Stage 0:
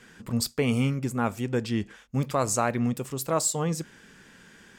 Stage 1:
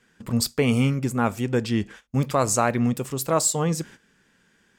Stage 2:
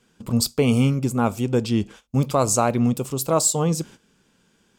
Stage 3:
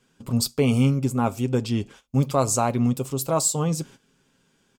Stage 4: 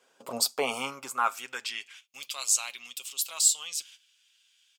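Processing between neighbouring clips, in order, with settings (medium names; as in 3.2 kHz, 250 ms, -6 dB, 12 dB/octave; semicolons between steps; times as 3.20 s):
gate -46 dBFS, range -14 dB; trim +4 dB
peaking EQ 1.8 kHz -12.5 dB 0.54 oct; trim +2.5 dB
comb 7.4 ms, depth 38%; trim -3 dB
high-pass sweep 590 Hz -> 3 kHz, 0.25–2.29 s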